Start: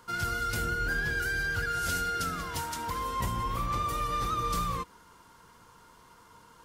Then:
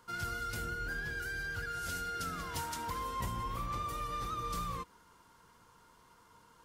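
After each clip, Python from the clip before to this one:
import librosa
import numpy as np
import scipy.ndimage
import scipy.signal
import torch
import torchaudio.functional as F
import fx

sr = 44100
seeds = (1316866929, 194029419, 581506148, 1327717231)

y = fx.rider(x, sr, range_db=10, speed_s=0.5)
y = F.gain(torch.from_numpy(y), -7.0).numpy()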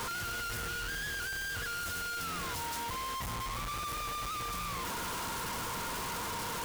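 y = np.sign(x) * np.sqrt(np.mean(np.square(x)))
y = F.gain(torch.from_numpy(y), 2.5).numpy()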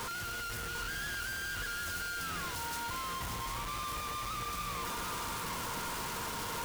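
y = x + 10.0 ** (-5.0 / 20.0) * np.pad(x, (int(749 * sr / 1000.0), 0))[:len(x)]
y = F.gain(torch.from_numpy(y), -2.0).numpy()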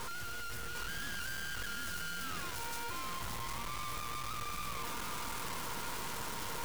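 y = np.maximum(x, 0.0)
y = F.gain(torch.from_numpy(y), 2.0).numpy()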